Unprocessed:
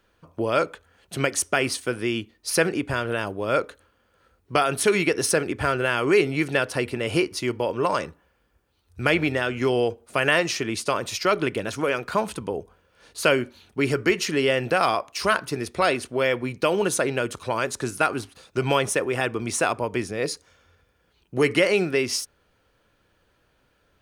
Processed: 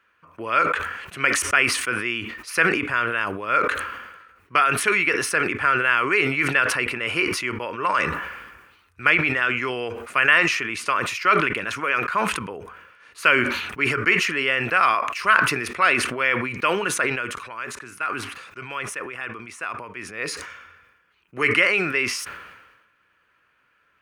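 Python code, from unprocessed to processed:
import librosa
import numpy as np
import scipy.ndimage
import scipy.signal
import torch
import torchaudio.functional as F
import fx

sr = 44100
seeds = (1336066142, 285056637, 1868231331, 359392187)

y = fx.edit(x, sr, fx.fade_down_up(start_s=16.98, length_s=3.33, db=-10.0, fade_s=0.35), tone=tone)
y = fx.highpass(y, sr, hz=130.0, slope=6)
y = fx.band_shelf(y, sr, hz=1700.0, db=13.5, octaves=1.7)
y = fx.sustainer(y, sr, db_per_s=47.0)
y = y * 10.0 ** (-7.5 / 20.0)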